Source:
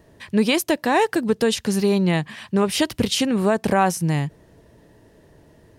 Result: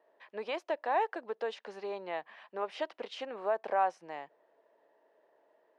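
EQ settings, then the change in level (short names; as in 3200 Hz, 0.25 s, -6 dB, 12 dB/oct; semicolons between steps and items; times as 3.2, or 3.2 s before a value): ladder high-pass 500 Hz, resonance 30%; tape spacing loss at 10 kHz 37 dB; -2.0 dB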